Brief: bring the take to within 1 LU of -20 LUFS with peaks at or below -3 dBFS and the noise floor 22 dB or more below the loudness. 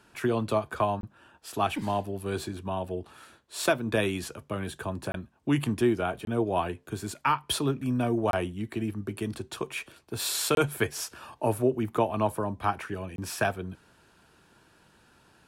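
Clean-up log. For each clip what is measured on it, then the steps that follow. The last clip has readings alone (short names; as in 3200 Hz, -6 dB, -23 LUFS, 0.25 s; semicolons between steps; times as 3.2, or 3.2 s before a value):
dropouts 6; longest dropout 22 ms; loudness -30.0 LUFS; peak -12.5 dBFS; loudness target -20.0 LUFS
-> interpolate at 1.01/5.12/6.25/8.31/10.55/13.16, 22 ms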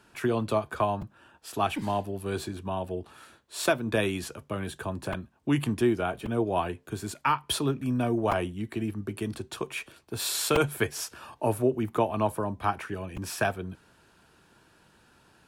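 dropouts 0; loudness -30.0 LUFS; peak -11.0 dBFS; loudness target -20.0 LUFS
-> gain +10 dB; limiter -3 dBFS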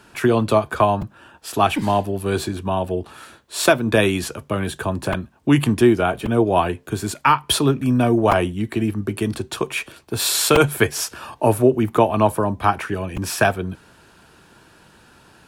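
loudness -20.0 LUFS; peak -3.0 dBFS; noise floor -52 dBFS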